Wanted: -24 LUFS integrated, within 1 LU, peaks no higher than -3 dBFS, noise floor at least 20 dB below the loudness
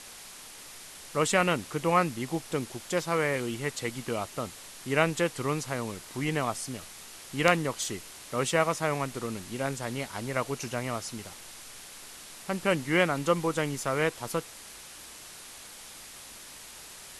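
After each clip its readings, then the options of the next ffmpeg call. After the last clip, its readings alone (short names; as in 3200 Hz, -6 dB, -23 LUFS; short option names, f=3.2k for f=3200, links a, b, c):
noise floor -47 dBFS; noise floor target -50 dBFS; loudness -29.5 LUFS; peak -7.0 dBFS; loudness target -24.0 LUFS
-> -af "afftdn=nr=6:nf=-47"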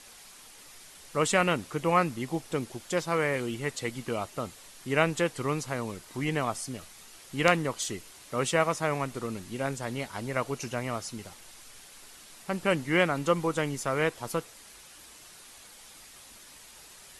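noise floor -51 dBFS; loudness -30.0 LUFS; peak -7.0 dBFS; loudness target -24.0 LUFS
-> -af "volume=6dB,alimiter=limit=-3dB:level=0:latency=1"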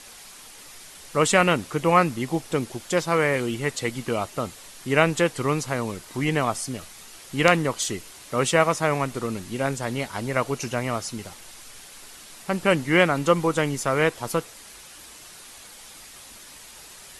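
loudness -24.0 LUFS; peak -3.0 dBFS; noise floor -45 dBFS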